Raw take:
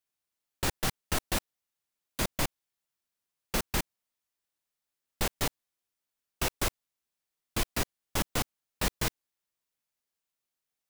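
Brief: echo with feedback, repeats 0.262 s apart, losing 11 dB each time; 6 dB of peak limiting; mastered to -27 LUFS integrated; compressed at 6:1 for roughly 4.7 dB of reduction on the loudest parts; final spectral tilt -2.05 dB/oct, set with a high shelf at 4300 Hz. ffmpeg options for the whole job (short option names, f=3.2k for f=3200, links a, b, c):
-af "highshelf=f=4.3k:g=6.5,acompressor=threshold=-27dB:ratio=6,alimiter=limit=-20dB:level=0:latency=1,aecho=1:1:262|524|786:0.282|0.0789|0.0221,volume=9dB"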